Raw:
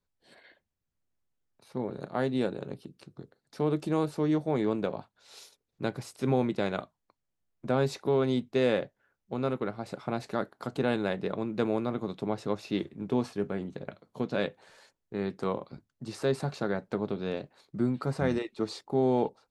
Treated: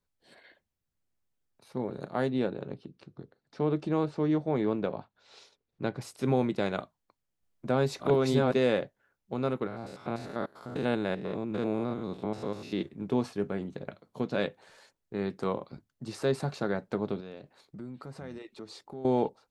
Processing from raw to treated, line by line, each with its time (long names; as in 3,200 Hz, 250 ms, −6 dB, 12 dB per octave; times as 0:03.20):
0:02.29–0:06.01: high-frequency loss of the air 120 metres
0:06.75–0:08.61: delay that plays each chunk backwards 678 ms, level 0 dB
0:09.67–0:12.86: spectrum averaged block by block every 100 ms
0:17.20–0:19.05: downward compressor 2.5 to 1, threshold −45 dBFS